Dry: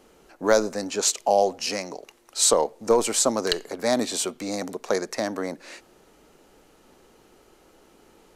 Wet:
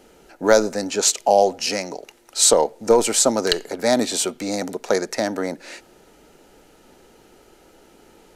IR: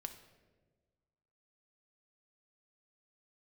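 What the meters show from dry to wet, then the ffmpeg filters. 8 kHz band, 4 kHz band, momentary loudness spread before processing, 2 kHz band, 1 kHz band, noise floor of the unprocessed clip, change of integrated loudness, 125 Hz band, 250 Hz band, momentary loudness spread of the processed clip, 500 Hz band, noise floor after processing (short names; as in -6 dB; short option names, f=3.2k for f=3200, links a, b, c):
+4.5 dB, +4.5 dB, 13 LU, +4.5 dB, +4.0 dB, -57 dBFS, +4.5 dB, +4.5 dB, +4.5 dB, 13 LU, +4.5 dB, -53 dBFS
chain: -af "asuperstop=centerf=1100:order=4:qfactor=7.2,volume=4.5dB"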